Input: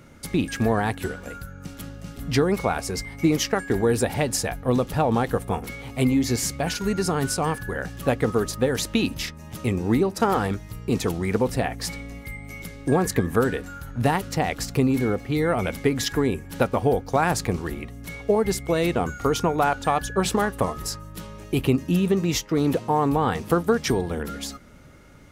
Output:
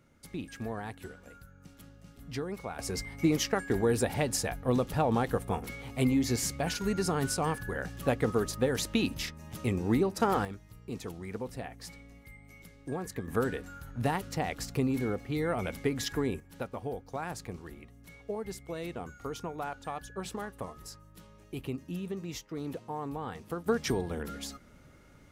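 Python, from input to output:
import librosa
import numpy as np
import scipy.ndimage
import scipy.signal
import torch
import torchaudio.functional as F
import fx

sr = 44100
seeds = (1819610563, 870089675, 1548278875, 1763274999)

y = fx.gain(x, sr, db=fx.steps((0.0, -15.5), (2.79, -6.0), (10.45, -15.5), (13.28, -8.5), (16.4, -16.0), (23.66, -7.5)))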